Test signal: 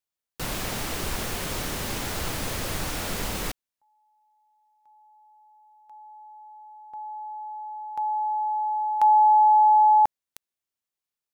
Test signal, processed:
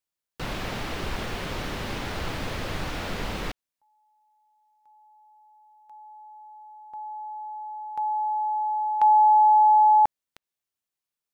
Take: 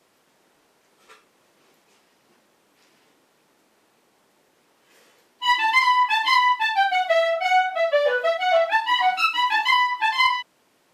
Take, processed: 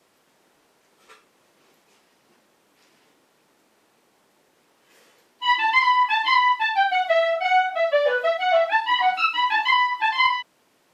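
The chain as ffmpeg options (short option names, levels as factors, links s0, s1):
-filter_complex "[0:a]acrossover=split=4600[s0][s1];[s1]acompressor=threshold=0.00251:ratio=4:attack=1:release=60[s2];[s0][s2]amix=inputs=2:normalize=0"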